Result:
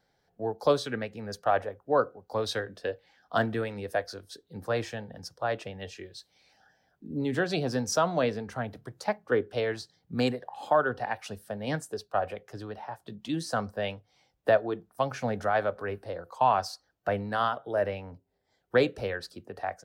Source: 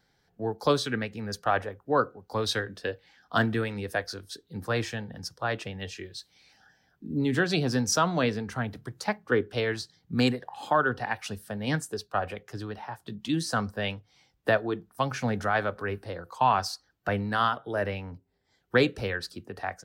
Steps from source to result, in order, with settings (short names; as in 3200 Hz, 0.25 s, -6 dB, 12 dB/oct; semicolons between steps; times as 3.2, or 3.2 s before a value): bell 610 Hz +8.5 dB 1 oct; gain -5 dB